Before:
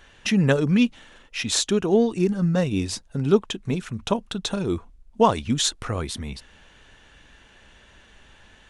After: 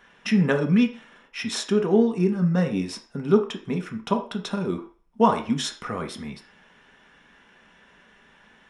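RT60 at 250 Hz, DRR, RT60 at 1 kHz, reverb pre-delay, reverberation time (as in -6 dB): 0.30 s, 4.0 dB, 0.45 s, 3 ms, 0.40 s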